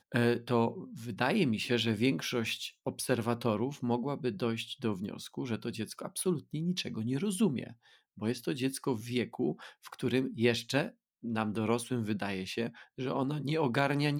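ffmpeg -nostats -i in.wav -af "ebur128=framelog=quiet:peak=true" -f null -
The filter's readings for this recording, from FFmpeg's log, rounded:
Integrated loudness:
  I:         -33.1 LUFS
  Threshold: -43.3 LUFS
Loudness range:
  LRA:         3.4 LU
  Threshold: -53.7 LUFS
  LRA low:   -35.2 LUFS
  LRA high:  -31.8 LUFS
True peak:
  Peak:      -13.4 dBFS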